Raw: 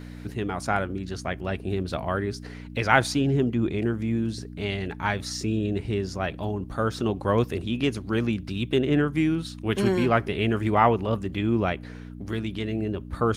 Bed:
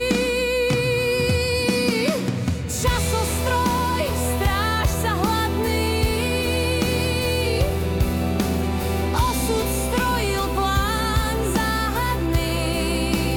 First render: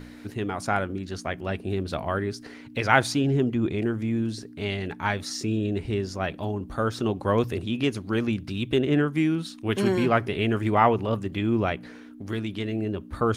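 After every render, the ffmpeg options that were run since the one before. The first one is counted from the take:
-af "bandreject=f=60:t=h:w=4,bandreject=f=120:t=h:w=4,bandreject=f=180:t=h:w=4"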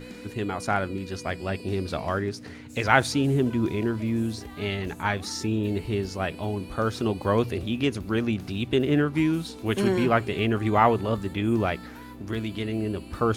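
-filter_complex "[1:a]volume=0.0668[s0];[0:a][s0]amix=inputs=2:normalize=0"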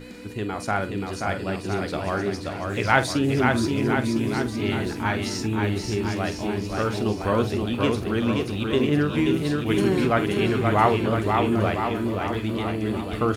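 -filter_complex "[0:a]asplit=2[s0][s1];[s1]adelay=47,volume=0.251[s2];[s0][s2]amix=inputs=2:normalize=0,asplit=2[s3][s4];[s4]aecho=0:1:530|1007|1436|1823|2170:0.631|0.398|0.251|0.158|0.1[s5];[s3][s5]amix=inputs=2:normalize=0"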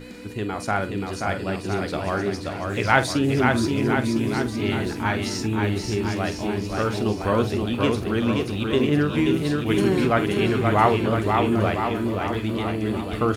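-af "volume=1.12"

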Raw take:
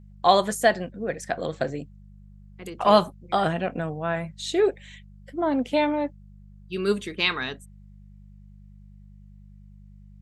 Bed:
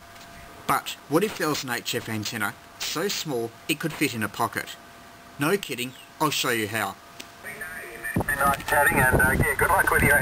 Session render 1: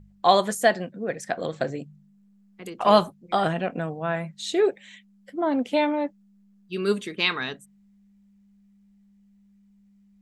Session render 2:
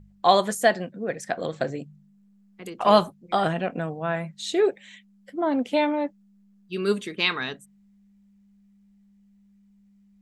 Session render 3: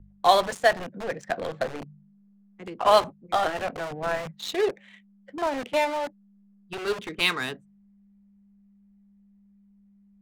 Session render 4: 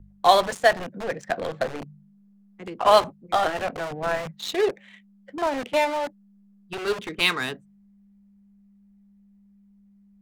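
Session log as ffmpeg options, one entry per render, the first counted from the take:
-af "bandreject=f=50:t=h:w=4,bandreject=f=100:t=h:w=4,bandreject=f=150:t=h:w=4"
-af anull
-filter_complex "[0:a]acrossover=split=360|420|5200[s0][s1][s2][s3];[s0]aeval=exprs='(mod(39.8*val(0)+1,2)-1)/39.8':c=same[s4];[s4][s1][s2][s3]amix=inputs=4:normalize=0,adynamicsmooth=sensitivity=8:basefreq=1600"
-af "volume=1.26"

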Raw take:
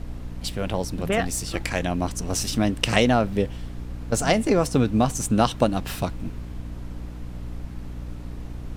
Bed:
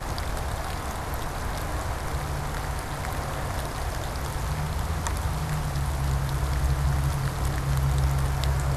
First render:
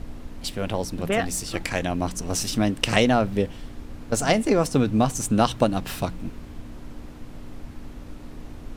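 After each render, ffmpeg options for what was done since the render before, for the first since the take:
-af "bandreject=f=60:t=h:w=4,bandreject=f=120:t=h:w=4,bandreject=f=180:t=h:w=4"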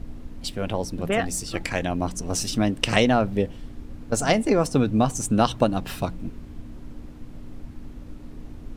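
-af "afftdn=nr=6:nf=-40"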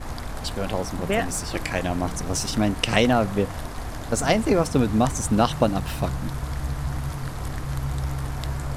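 -filter_complex "[1:a]volume=0.631[s0];[0:a][s0]amix=inputs=2:normalize=0"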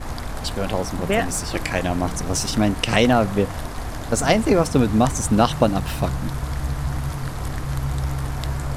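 -af "volume=1.41,alimiter=limit=0.794:level=0:latency=1"

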